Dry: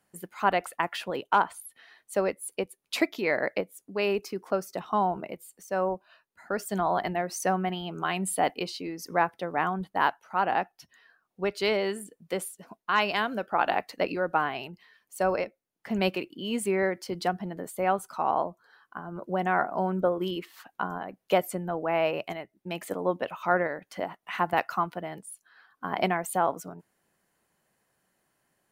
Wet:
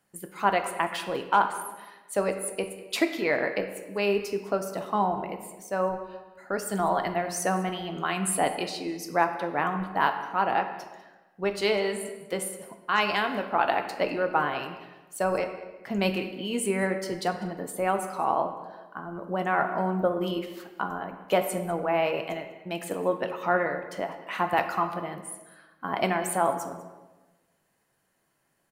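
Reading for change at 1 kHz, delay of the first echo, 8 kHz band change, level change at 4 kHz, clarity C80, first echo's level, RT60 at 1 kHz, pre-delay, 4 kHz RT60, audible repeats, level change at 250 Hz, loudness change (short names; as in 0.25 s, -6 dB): +1.0 dB, 0.198 s, +4.0 dB, +1.0 dB, 10.0 dB, -19.0 dB, 1.1 s, 6 ms, 0.85 s, 1, +1.5 dB, +1.0 dB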